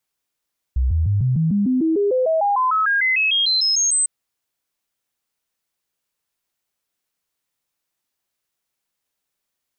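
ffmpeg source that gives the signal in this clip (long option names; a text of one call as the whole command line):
ffmpeg -f lavfi -i "aevalsrc='0.178*clip(min(mod(t,0.15),0.15-mod(t,0.15))/0.005,0,1)*sin(2*PI*63.9*pow(2,floor(t/0.15)/3)*mod(t,0.15))':duration=3.3:sample_rate=44100" out.wav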